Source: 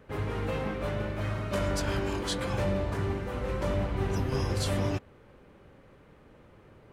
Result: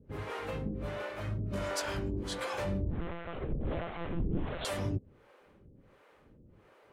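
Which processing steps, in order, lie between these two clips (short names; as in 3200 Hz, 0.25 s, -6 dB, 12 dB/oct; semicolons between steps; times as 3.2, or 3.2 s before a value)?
harmonic tremolo 1.4 Hz, depth 100%, crossover 400 Hz; 2.91–4.65 monotone LPC vocoder at 8 kHz 170 Hz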